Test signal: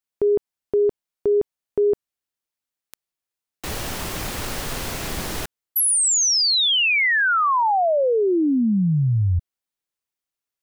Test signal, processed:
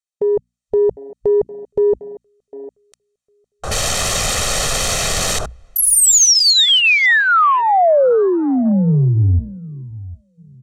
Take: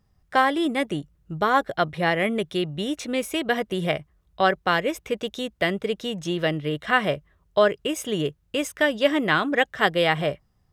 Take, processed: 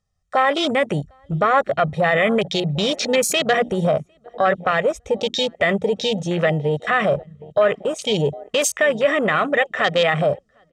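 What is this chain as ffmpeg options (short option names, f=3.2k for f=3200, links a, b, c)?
-filter_complex "[0:a]lowpass=f=8k:w=0.5412,lowpass=f=8k:w=1.3066,aecho=1:1:1.6:0.7,crystalizer=i=1.5:c=0,bandreject=f=5k:w=16,dynaudnorm=f=320:g=3:m=7dB,bass=f=250:g=-3,treble=f=4k:g=4,bandreject=f=60:t=h:w=6,bandreject=f=120:t=h:w=6,bandreject=f=180:t=h:w=6,bandreject=f=240:t=h:w=6,acompressor=threshold=-19dB:ratio=3:attack=0.13:release=33:knee=1:detection=peak,asplit=2[a][b];[b]adelay=754,lowpass=f=1.2k:p=1,volume=-17dB,asplit=2[c][d];[d]adelay=754,lowpass=f=1.2k:p=1,volume=0.28,asplit=2[e][f];[f]adelay=754,lowpass=f=1.2k:p=1,volume=0.28[g];[a][c][e][g]amix=inputs=4:normalize=0,afwtdn=0.0316,volume=6dB"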